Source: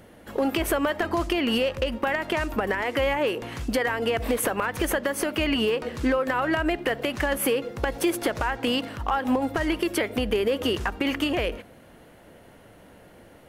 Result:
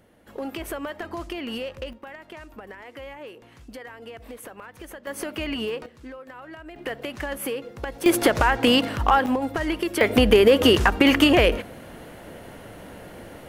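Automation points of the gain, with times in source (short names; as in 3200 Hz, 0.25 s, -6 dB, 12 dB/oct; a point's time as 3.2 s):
-8 dB
from 1.93 s -15.5 dB
from 5.07 s -5 dB
from 5.86 s -17 dB
from 6.76 s -5.5 dB
from 8.06 s +7 dB
from 9.26 s -0.5 dB
from 10.01 s +9 dB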